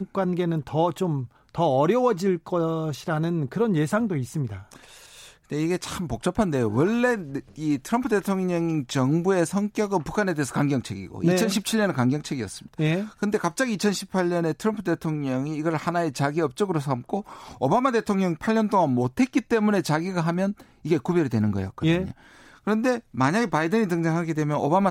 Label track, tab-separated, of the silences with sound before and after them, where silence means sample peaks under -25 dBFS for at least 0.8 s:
4.530000	5.520000	silence